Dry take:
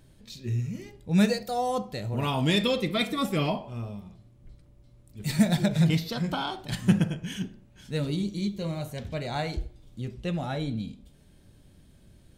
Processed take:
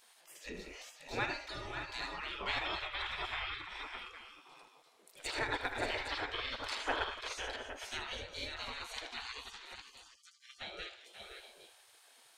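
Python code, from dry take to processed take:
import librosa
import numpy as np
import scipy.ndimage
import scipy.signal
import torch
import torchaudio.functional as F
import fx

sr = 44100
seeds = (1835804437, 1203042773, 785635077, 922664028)

p1 = fx.env_lowpass_down(x, sr, base_hz=1700.0, full_db=-24.0)
p2 = fx.brickwall_highpass(p1, sr, low_hz=1200.0, at=(9.32, 10.6), fade=0.02)
p3 = 10.0 ** (-19.0 / 20.0) * np.tanh(p2 / 10.0 ** (-19.0 / 20.0))
p4 = p2 + (p3 * librosa.db_to_amplitude(-9.5))
p5 = fx.echo_multitap(p4, sr, ms=(78, 293, 537, 577, 590, 811), db=(-9.5, -18.0, -11.0, -13.5, -11.5, -12.0))
p6 = fx.spec_gate(p5, sr, threshold_db=-25, keep='weak')
y = p6 * librosa.db_to_amplitude(3.0)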